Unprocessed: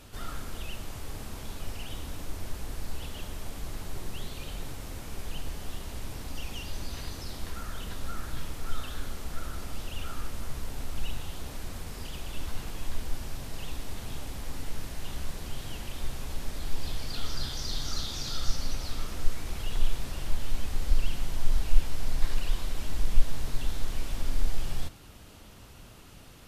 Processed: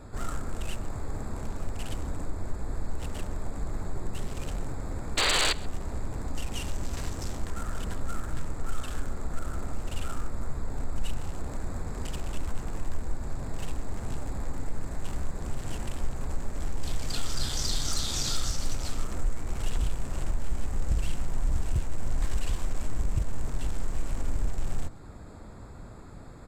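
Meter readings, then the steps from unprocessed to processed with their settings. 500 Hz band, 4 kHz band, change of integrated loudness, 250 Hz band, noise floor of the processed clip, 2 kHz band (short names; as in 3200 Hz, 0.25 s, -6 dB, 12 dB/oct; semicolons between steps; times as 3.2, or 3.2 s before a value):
+4.5 dB, +4.0 dB, +3.5 dB, +4.0 dB, -43 dBFS, +5.0 dB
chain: Wiener smoothing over 15 samples; painted sound noise, 5.17–5.53, 280–4800 Hz -28 dBFS; in parallel at +0.5 dB: compressor, threshold -33 dBFS, peak gain reduction 22 dB; on the sum: wavefolder -18 dBFS; bell 7800 Hz +13.5 dB 0.44 oct; on a send: echo 0.132 s -22 dB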